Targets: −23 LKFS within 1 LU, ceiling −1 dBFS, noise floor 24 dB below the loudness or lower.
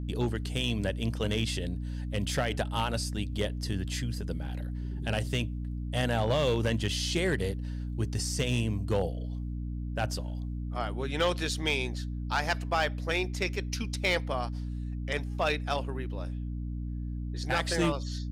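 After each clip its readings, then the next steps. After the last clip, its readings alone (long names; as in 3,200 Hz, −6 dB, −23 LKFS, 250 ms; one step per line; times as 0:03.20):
share of clipped samples 0.5%; peaks flattened at −19.5 dBFS; mains hum 60 Hz; hum harmonics up to 300 Hz; level of the hum −32 dBFS; integrated loudness −31.5 LKFS; sample peak −19.5 dBFS; target loudness −23.0 LKFS
→ clipped peaks rebuilt −19.5 dBFS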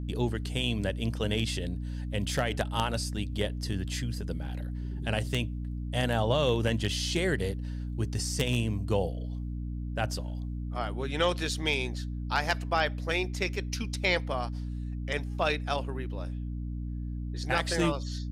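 share of clipped samples 0.0%; mains hum 60 Hz; hum harmonics up to 300 Hz; level of the hum −32 dBFS
→ hum removal 60 Hz, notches 5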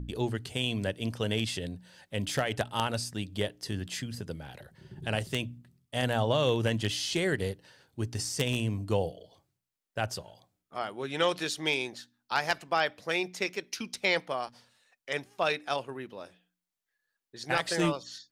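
mains hum none found; integrated loudness −31.5 LKFS; sample peak −10.0 dBFS; target loudness −23.0 LKFS
→ level +8.5 dB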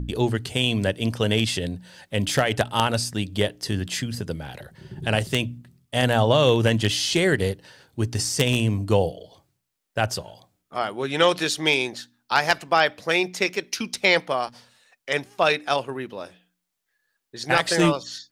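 integrated loudness −23.0 LKFS; sample peak −1.5 dBFS; background noise floor −79 dBFS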